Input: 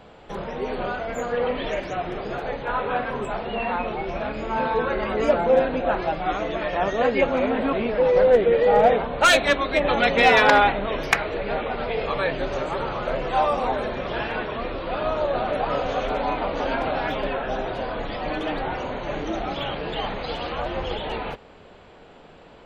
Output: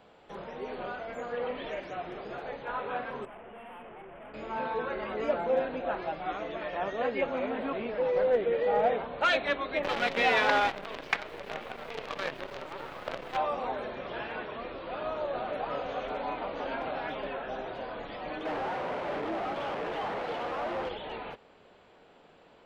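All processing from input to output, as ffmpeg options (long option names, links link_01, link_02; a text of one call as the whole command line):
ffmpeg -i in.wav -filter_complex "[0:a]asettb=1/sr,asplit=3[link_01][link_02][link_03];[link_01]atrim=end=3.254[link_04];[link_02]atrim=start=3.25:end=4.34,asetpts=PTS-STARTPTS,afade=type=in:duration=0.004:curve=qsin,afade=type=out:start_time=1.086:duration=0.004:curve=qsin,equalizer=frequency=3300:width=1.1:gain=-9.5,aeval=exprs='(tanh(56.2*val(0)+0.55)-tanh(0.55))/56.2':channel_layout=same,asuperstop=centerf=5400:order=12:qfactor=1[link_05];[link_03]atrim=start=4.336[link_06];[link_04][link_05]acrossfade=duration=0.004:curve1=hsin:curve2=qsin[link_07];[link_07][link_06]acrossfade=duration=0.004:curve1=qsin:curve2=hsin,asettb=1/sr,asplit=3[link_08][link_09][link_10];[link_08]atrim=end=9.834[link_11];[link_09]atrim=start=9.83:end=13.37,asetpts=PTS-STARTPTS,afade=type=in:duration=0.004:curve=qsin,afade=type=out:start_time=3.536:duration=0.004:curve=qsin,aemphasis=mode=production:type=cd,acrusher=bits=4:dc=4:mix=0:aa=0.000001[link_12];[link_10]atrim=start=13.366[link_13];[link_11][link_12]acrossfade=duration=0.004:curve1=hsin:curve2=qsin[link_14];[link_14][link_13]acrossfade=duration=0.004:curve1=qsin:curve2=hsin,asettb=1/sr,asplit=3[link_15][link_16][link_17];[link_15]atrim=end=18.454[link_18];[link_16]atrim=start=18.45:end=20.89,asetpts=PTS-STARTPTS,afade=type=in:duration=0.004:curve=qsin,afade=type=out:start_time=2.436:duration=0.004:curve=qsin,highshelf=frequency=4400:gain=-11,acrusher=bits=4:mix=0:aa=0.5,asplit=2[link_19][link_20];[link_20]highpass=frequency=720:poles=1,volume=29dB,asoftclip=type=tanh:threshold=-15.5dB[link_21];[link_19][link_21]amix=inputs=2:normalize=0,lowpass=frequency=1100:poles=1,volume=-6dB[link_22];[link_17]atrim=start=20.886[link_23];[link_18][link_22]acrossfade=duration=0.004:curve1=hsin:curve2=qsin[link_24];[link_24][link_23]acrossfade=duration=0.004:curve1=qsin:curve2=hsin,lowshelf=frequency=120:gain=-11,acrossover=split=4400[link_25][link_26];[link_26]acompressor=threshold=-58dB:ratio=4:attack=1:release=60[link_27];[link_25][link_27]amix=inputs=2:normalize=0,volume=-9dB" out.wav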